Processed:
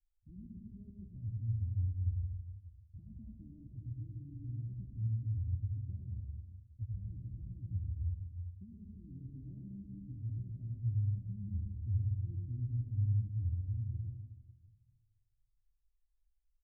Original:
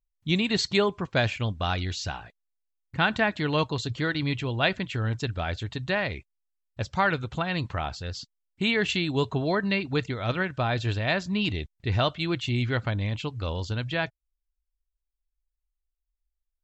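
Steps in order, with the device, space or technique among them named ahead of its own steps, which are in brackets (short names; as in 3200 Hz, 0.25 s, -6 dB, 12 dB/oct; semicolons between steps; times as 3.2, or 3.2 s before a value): club heard from the street (limiter -18.5 dBFS, peak gain reduction 10 dB; LPF 130 Hz 24 dB/oct; reverb RT60 1.2 s, pre-delay 75 ms, DRR 0 dB); comb 3.3 ms, depth 96%; gain -5.5 dB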